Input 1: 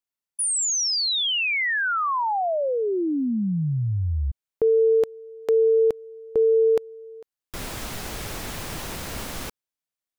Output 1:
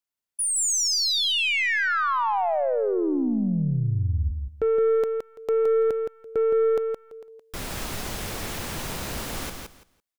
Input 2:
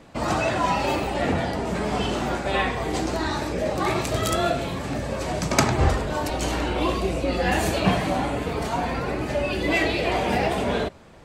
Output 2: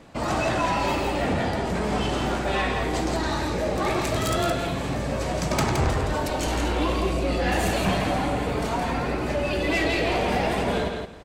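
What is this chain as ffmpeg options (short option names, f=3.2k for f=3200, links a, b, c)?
-filter_complex "[0:a]aeval=exprs='0.75*(cos(1*acos(clip(val(0)/0.75,-1,1)))-cos(1*PI/2))+0.0335*(cos(6*acos(clip(val(0)/0.75,-1,1)))-cos(6*PI/2))':c=same,asoftclip=type=tanh:threshold=-18dB,asplit=2[a][b];[b]aecho=0:1:168|336|504:0.562|0.107|0.0203[c];[a][c]amix=inputs=2:normalize=0"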